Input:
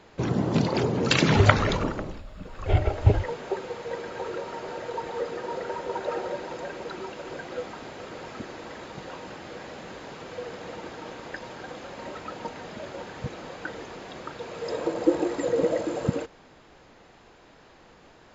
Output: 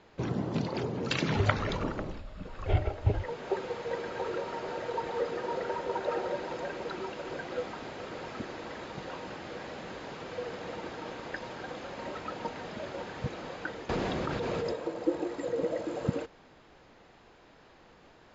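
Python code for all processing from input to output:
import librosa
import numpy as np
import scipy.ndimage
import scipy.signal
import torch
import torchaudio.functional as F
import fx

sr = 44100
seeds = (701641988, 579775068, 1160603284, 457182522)

y = fx.chain(x, sr, fx.low_shelf(hz=340.0, db=9.5),
    fx.env_flatten(amount_pct=100), at=(13.89, 14.74))
y = scipy.signal.sosfilt(scipy.signal.butter(2, 6400.0, 'lowpass', fs=sr, output='sos'), y)
y = fx.rider(y, sr, range_db=4, speed_s=0.5)
y = y * librosa.db_to_amplitude(-5.0)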